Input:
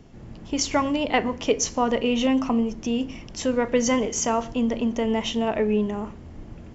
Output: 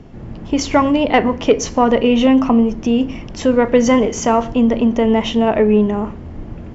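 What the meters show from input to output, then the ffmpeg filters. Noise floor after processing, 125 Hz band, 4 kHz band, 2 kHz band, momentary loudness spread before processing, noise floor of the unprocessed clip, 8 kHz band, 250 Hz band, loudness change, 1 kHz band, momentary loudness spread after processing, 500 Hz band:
-32 dBFS, +10.0 dB, +4.0 dB, +6.5 dB, 11 LU, -42 dBFS, n/a, +9.5 dB, +9.0 dB, +9.0 dB, 11 LU, +9.5 dB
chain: -af "acontrast=84,aemphasis=mode=reproduction:type=75kf,volume=3dB"

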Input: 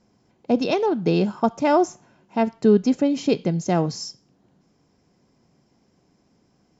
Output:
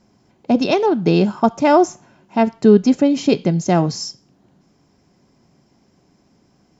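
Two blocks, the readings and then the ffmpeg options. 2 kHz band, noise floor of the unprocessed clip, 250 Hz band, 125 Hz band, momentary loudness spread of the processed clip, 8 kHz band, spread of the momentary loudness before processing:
+5.5 dB, -64 dBFS, +5.5 dB, +5.5 dB, 10 LU, n/a, 10 LU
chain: -af "bandreject=f=480:w=12,volume=5.5dB"

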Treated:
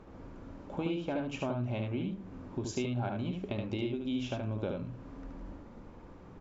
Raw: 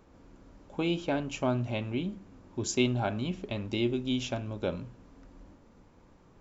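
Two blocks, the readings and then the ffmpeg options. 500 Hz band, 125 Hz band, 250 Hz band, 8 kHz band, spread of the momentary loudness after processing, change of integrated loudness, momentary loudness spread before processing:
-4.0 dB, -2.0 dB, -3.0 dB, n/a, 16 LU, -4.0 dB, 12 LU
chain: -af "aemphasis=mode=reproduction:type=75kf,acompressor=threshold=-43dB:ratio=3,aecho=1:1:74:0.631,volume=6.5dB"

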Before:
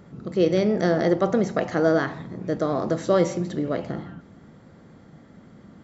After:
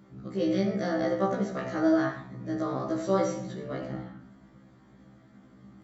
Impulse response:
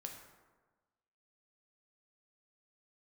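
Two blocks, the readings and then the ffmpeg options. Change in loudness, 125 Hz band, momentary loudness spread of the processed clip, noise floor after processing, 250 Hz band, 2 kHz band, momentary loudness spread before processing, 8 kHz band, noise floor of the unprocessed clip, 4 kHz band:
-6.0 dB, -7.0 dB, 12 LU, -57 dBFS, -4.0 dB, -6.0 dB, 9 LU, n/a, -51 dBFS, -6.5 dB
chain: -filter_complex "[0:a]bandreject=f=460:w=12[a];[1:a]atrim=start_sample=2205,atrim=end_sample=6174[b];[a][b]afir=irnorm=-1:irlink=0,afftfilt=real='re*1.73*eq(mod(b,3),0)':imag='im*1.73*eq(mod(b,3),0)':win_size=2048:overlap=0.75"

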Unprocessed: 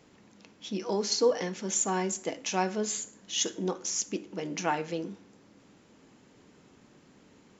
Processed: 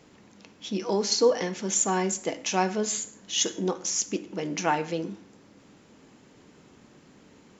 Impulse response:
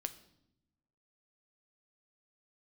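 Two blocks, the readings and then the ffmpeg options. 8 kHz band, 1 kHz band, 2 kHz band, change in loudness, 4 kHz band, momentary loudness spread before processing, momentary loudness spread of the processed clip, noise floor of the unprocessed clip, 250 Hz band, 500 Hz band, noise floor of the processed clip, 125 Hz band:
n/a, +4.0 dB, +3.5 dB, +3.5 dB, +3.5 dB, 10 LU, 10 LU, -60 dBFS, +3.5 dB, +3.5 dB, -56 dBFS, +3.5 dB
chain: -filter_complex "[0:a]asplit=2[a][b];[1:a]atrim=start_sample=2205,atrim=end_sample=3969,asetrate=22932,aresample=44100[c];[b][c]afir=irnorm=-1:irlink=0,volume=-7dB[d];[a][d]amix=inputs=2:normalize=0"

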